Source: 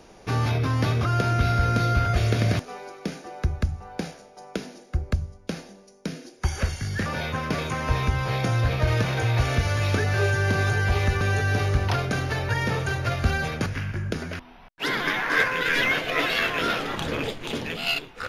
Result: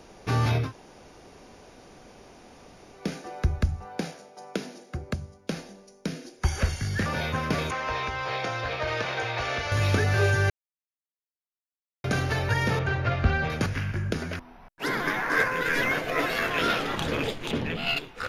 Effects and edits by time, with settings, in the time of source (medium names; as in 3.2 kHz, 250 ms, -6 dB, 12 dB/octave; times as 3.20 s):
0.65–2.99 s: room tone, crossfade 0.16 s
3.85–5.52 s: high-pass 130 Hz
7.71–9.72 s: three-band isolator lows -16 dB, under 390 Hz, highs -20 dB, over 6.2 kHz
10.50–12.04 s: mute
12.79–13.50 s: low-pass 3.1 kHz
14.36–16.51 s: peaking EQ 3.2 kHz -9 dB 1.1 oct
17.51–17.97 s: tone controls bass +5 dB, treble -11 dB